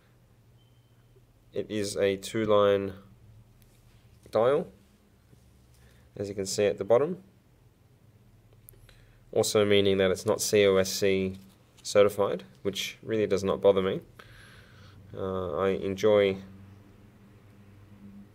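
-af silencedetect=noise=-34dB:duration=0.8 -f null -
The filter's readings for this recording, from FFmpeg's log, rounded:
silence_start: 0.00
silence_end: 1.56 | silence_duration: 1.56
silence_start: 2.91
silence_end: 4.33 | silence_duration: 1.42
silence_start: 4.63
silence_end: 6.17 | silence_duration: 1.54
silence_start: 7.14
silence_end: 8.69 | silence_duration: 1.55
silence_start: 14.20
silence_end: 15.14 | silence_duration: 0.94
silence_start: 16.40
silence_end: 18.34 | silence_duration: 1.94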